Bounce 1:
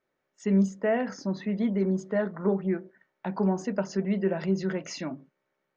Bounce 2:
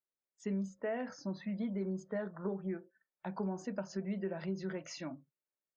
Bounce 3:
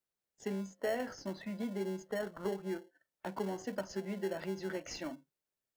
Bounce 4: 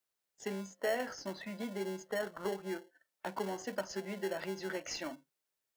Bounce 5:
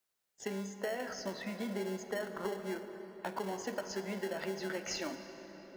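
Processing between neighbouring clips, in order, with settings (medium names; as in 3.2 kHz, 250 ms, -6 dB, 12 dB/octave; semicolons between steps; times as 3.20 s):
spectral noise reduction 17 dB; compression 5:1, threshold -25 dBFS, peak gain reduction 7 dB; trim -8 dB
high-pass 300 Hz 12 dB/octave; in parallel at -8 dB: sample-and-hold 36×; on the sum: trim +2 dB
bass shelf 380 Hz -9.5 dB; trim +4 dB
compression, threshold -36 dBFS, peak gain reduction 8 dB; on a send at -8 dB: reverberation RT60 5.2 s, pre-delay 35 ms; on the sum: trim +2.5 dB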